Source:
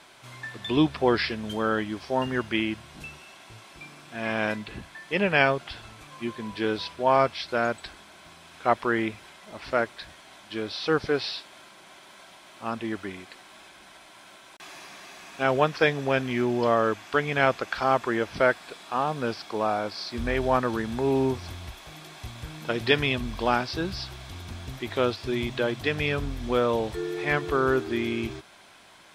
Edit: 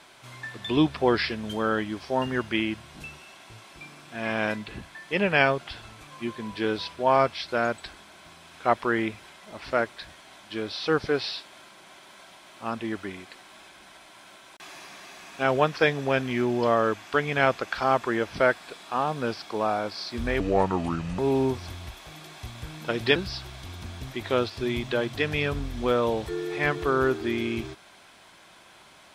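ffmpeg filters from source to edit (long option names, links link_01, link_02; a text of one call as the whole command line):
ffmpeg -i in.wav -filter_complex "[0:a]asplit=4[link_01][link_02][link_03][link_04];[link_01]atrim=end=20.404[link_05];[link_02]atrim=start=20.4:end=20.99,asetpts=PTS-STARTPTS,asetrate=33075,aresample=44100[link_06];[link_03]atrim=start=20.986:end=22.962[link_07];[link_04]atrim=start=23.818[link_08];[link_05][link_06]acrossfade=duration=0.004:curve1=hsin:curve2=hsin[link_09];[link_09][link_07]acrossfade=duration=0.004:curve1=hsin:curve2=hsin[link_10];[link_10][link_08]acrossfade=duration=0.004:curve1=hsin:curve2=hsin" out.wav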